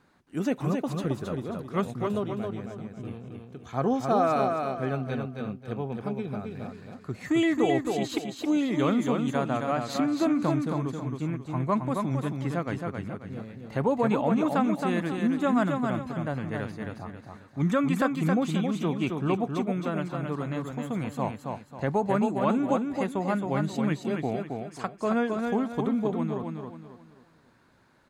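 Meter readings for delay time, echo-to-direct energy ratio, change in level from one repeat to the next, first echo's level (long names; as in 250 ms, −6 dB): 269 ms, −4.0 dB, −9.0 dB, −4.5 dB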